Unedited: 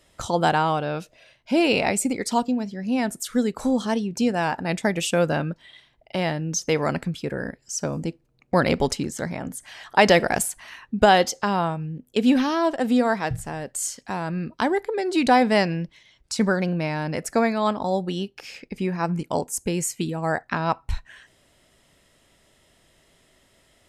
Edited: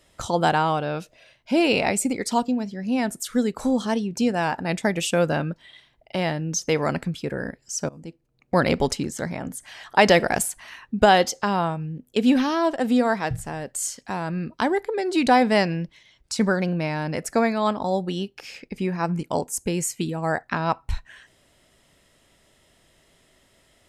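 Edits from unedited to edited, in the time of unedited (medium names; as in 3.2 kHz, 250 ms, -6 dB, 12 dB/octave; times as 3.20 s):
7.89–8.59 s: fade in, from -21 dB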